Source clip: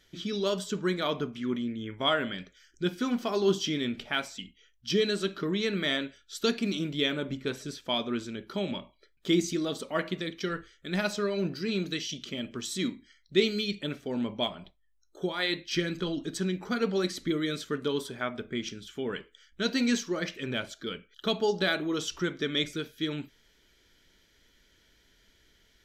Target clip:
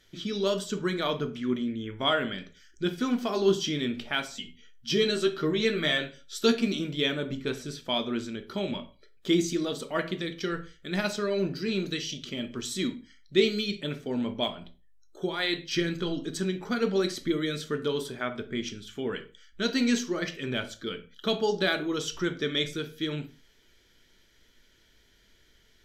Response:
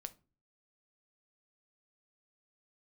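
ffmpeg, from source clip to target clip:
-filter_complex "[0:a]asettb=1/sr,asplit=3[s0][s1][s2];[s0]atrim=end=4.294[s3];[s1]atrim=start=4.29:end=6.67,asetpts=PTS-STARTPTS,afade=t=in:d=0.004:c=qsin,afade=t=out:st=2.376:d=0.004:c=qsin,asplit=2[s4][s5];[s5]adelay=13,volume=0.668[s6];[s4][s6]amix=inputs=2:normalize=0,atrim=end_sample=104958[s7];[s2]atrim=start=6.666[s8];[s3][s7]acrossfade=d=0.004:c1=hsin:c2=qsin[s9];[s9][s8]acrossfade=d=0.004:c1=qsin:c2=hsin[s10];[1:a]atrim=start_sample=2205,atrim=end_sample=6174,asetrate=33957,aresample=44100[s11];[s10][s11]afir=irnorm=-1:irlink=0,volume=1.58"

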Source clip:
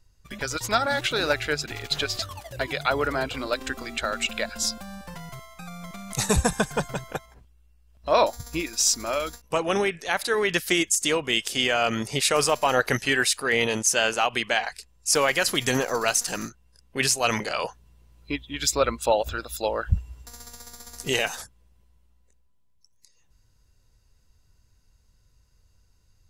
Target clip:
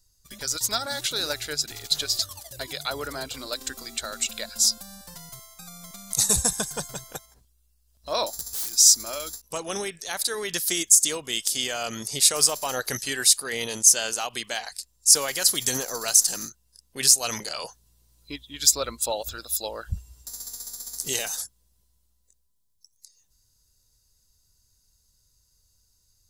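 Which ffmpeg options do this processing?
-filter_complex "[0:a]asettb=1/sr,asplit=3[s0][s1][s2];[s0]atrim=end=8.324[s3];[s1]atrim=start=8.32:end=8.76,asetpts=PTS-STARTPTS,afade=t=in:d=0.004:c=qsin,afade=t=out:st=0.436:d=0.004:c=qsin,aeval=exprs='(mod(37.6*val(0)+1,2)-1)/37.6':c=same[s4];[s2]atrim=start=8.756[s5];[s3][s4]acrossfade=d=0.004:c1=hsin:c2=qsin[s6];[s6][s5]acrossfade=d=0.004:c1=qsin:c2=hsin,aexciter=amount=6.3:drive=2.9:freq=3700,volume=0.398"

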